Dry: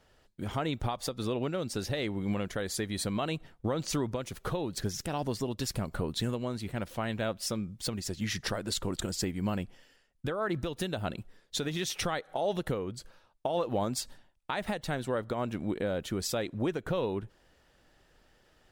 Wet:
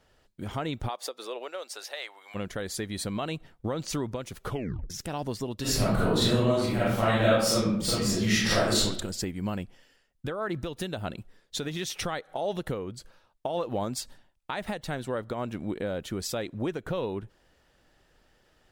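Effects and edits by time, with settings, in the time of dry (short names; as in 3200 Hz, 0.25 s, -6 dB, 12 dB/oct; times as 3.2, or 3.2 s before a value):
0.88–2.34 HPF 340 Hz -> 810 Hz 24 dB/oct
4.48 tape stop 0.42 s
5.61–8.81 reverb throw, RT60 0.82 s, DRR -10 dB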